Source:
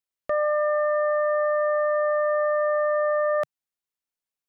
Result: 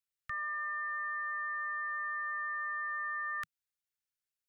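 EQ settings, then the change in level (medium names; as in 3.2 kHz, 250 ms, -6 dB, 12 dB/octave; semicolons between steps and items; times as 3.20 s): elliptic band-stop 150–1400 Hz, stop band 40 dB; -2.5 dB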